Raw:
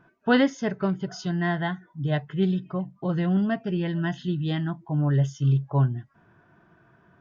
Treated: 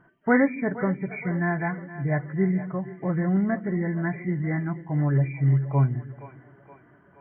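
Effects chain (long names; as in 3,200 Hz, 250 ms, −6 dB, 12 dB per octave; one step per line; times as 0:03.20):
hearing-aid frequency compression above 1,700 Hz 4 to 1
echo with a time of its own for lows and highs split 320 Hz, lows 139 ms, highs 472 ms, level −14 dB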